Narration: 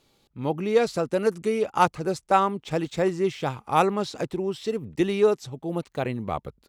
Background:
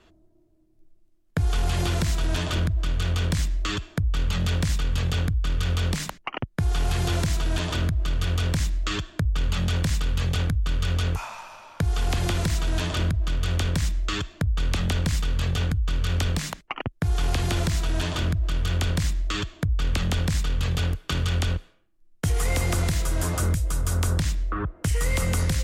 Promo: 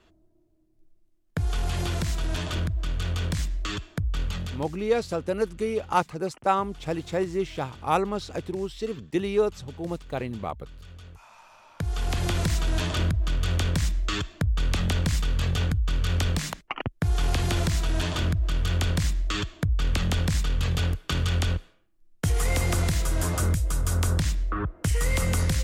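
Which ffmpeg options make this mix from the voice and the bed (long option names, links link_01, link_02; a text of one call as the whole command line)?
ffmpeg -i stem1.wav -i stem2.wav -filter_complex "[0:a]adelay=4150,volume=-3dB[link_01];[1:a]volume=17dB,afade=type=out:start_time=4.21:duration=0.49:silence=0.133352,afade=type=in:start_time=11.17:duration=1.25:silence=0.0944061[link_02];[link_01][link_02]amix=inputs=2:normalize=0" out.wav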